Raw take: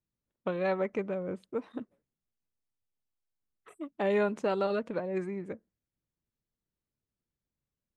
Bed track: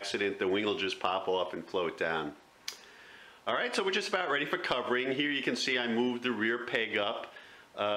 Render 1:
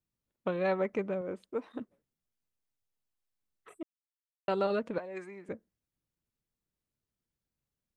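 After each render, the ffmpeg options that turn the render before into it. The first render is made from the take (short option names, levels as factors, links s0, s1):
-filter_complex "[0:a]asettb=1/sr,asplit=3[s0][s1][s2];[s0]atrim=end=1.214[s3];[s1]atrim=start=1.21:end=1.79,asetpts=PTS-STARTPTS,afade=t=in:d=0.004:c=qsin,afade=t=out:st=0.576:d=0.004:c=qsin,equalizer=f=140:w=1.5:g=-11[s4];[s2]atrim=start=1.786[s5];[s3][s4]acrossfade=d=0.004:c1=hsin:c2=qsin[s6];[s6][s5]acrossfade=d=0.004:c1=qsin:c2=hsin,asettb=1/sr,asplit=3[s7][s8][s9];[s7]atrim=end=4.984[s10];[s8]atrim=start=4.98:end=5.49,asetpts=PTS-STARTPTS,afade=t=in:d=0.004:c=qsin,afade=t=out:st=0.506:d=0.004:c=qsin,highpass=f=1000:p=1[s11];[s9]atrim=start=5.486[s12];[s10][s11]acrossfade=d=0.004:c1=hsin:c2=qsin[s13];[s13][s12]acrossfade=d=0.004:c1=qsin:c2=hsin,asplit=3[s14][s15][s16];[s14]atrim=end=3.83,asetpts=PTS-STARTPTS,afade=t=out:st=3.826:d=0.004:c=hsin[s17];[s15]atrim=start=3.83:end=4.48,asetpts=PTS-STARTPTS,volume=0[s18];[s16]atrim=start=4.48,asetpts=PTS-STARTPTS,afade=t=in:d=0.004:c=hsin[s19];[s17][s18][s19]concat=n=3:v=0:a=1"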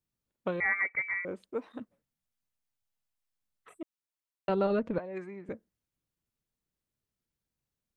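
-filter_complex "[0:a]asettb=1/sr,asplit=3[s0][s1][s2];[s0]atrim=end=0.604[s3];[s1]atrim=start=0.6:end=1.25,asetpts=PTS-STARTPTS,afade=t=in:d=0.004:c=qsin,afade=t=out:st=0.646:d=0.004:c=qsin,lowpass=f=2100:t=q:w=0.5098,lowpass=f=2100:t=q:w=0.6013,lowpass=f=2100:t=q:w=0.9,lowpass=f=2100:t=q:w=2.563,afreqshift=-2500[s4];[s2]atrim=start=1.246[s5];[s3][s4]acrossfade=d=0.004:c1=hsin:c2=qsin[s6];[s6][s5]acrossfade=d=0.004:c1=qsin:c2=hsin,asettb=1/sr,asplit=3[s7][s8][s9];[s7]atrim=end=1.764[s10];[s8]atrim=start=1.76:end=3.79,asetpts=PTS-STARTPTS,afade=t=in:d=0.004:c=qsin,afade=t=out:st=2.026:d=0.004:c=qsin,equalizer=f=380:w=2.7:g=-8.5[s11];[s9]atrim=start=3.786[s12];[s10][s11]acrossfade=d=0.004:c1=hsin:c2=qsin[s13];[s13][s12]acrossfade=d=0.004:c1=qsin:c2=hsin,asettb=1/sr,asplit=3[s14][s15][s16];[s14]atrim=end=4.494[s17];[s15]atrim=start=4.49:end=5.5,asetpts=PTS-STARTPTS,afade=t=in:d=0.004:c=qsin,afade=t=out:st=1.006:d=0.004:c=qsin,aemphasis=mode=reproduction:type=bsi[s18];[s16]atrim=start=5.496[s19];[s17][s18]acrossfade=d=0.004:c1=hsin:c2=qsin[s20];[s20][s19]acrossfade=d=0.004:c1=qsin:c2=hsin"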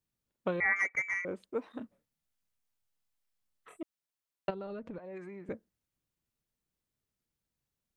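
-filter_complex "[0:a]asettb=1/sr,asplit=3[s0][s1][s2];[s0]atrim=end=0.764[s3];[s1]atrim=start=0.76:end=1.24,asetpts=PTS-STARTPTS,afade=t=in:d=0.004:c=qsin,afade=t=out:st=0.476:d=0.004:c=qsin,adynamicsmooth=sensitivity=4.5:basefreq=3100[s4];[s2]atrim=start=1.236[s5];[s3][s4]acrossfade=d=0.004:c1=hsin:c2=qsin[s6];[s6][s5]acrossfade=d=0.004:c1=qsin:c2=hsin,asettb=1/sr,asplit=3[s7][s8][s9];[s7]atrim=end=1.784[s10];[s8]atrim=start=1.78:end=3.82,asetpts=PTS-STARTPTS,afade=t=in:d=0.004:c=qsin,afade=t=out:st=2.036:d=0.004:c=qsin,asplit=2[s11][s12];[s12]adelay=26,volume=0.531[s13];[s11][s13]amix=inputs=2:normalize=0,atrim=end_sample=89964[s14];[s9]atrim=start=3.816[s15];[s10][s14]acrossfade=d=0.004:c1=hsin:c2=qsin[s16];[s16][s15]acrossfade=d=0.004:c1=qsin:c2=hsin,asplit=3[s17][s18][s19];[s17]afade=t=out:st=4.49:d=0.02[s20];[s18]acompressor=threshold=0.00891:ratio=4:attack=3.2:release=140:knee=1:detection=peak,afade=t=in:st=4.49:d=0.02,afade=t=out:st=5.45:d=0.02[s21];[s19]afade=t=in:st=5.45:d=0.02[s22];[s20][s21][s22]amix=inputs=3:normalize=0"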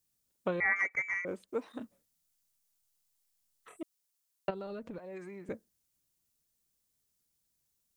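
-filter_complex "[0:a]bass=f=250:g=-1,treble=f=4000:g=12,acrossover=split=3000[s0][s1];[s1]acompressor=threshold=0.001:ratio=4:attack=1:release=60[s2];[s0][s2]amix=inputs=2:normalize=0"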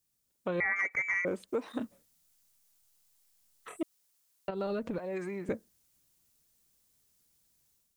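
-af "dynaudnorm=f=430:g=3:m=2.51,alimiter=limit=0.075:level=0:latency=1:release=118"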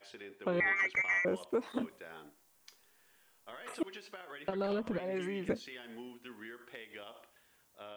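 -filter_complex "[1:a]volume=0.126[s0];[0:a][s0]amix=inputs=2:normalize=0"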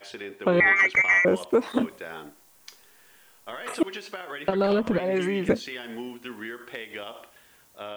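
-af "volume=3.76"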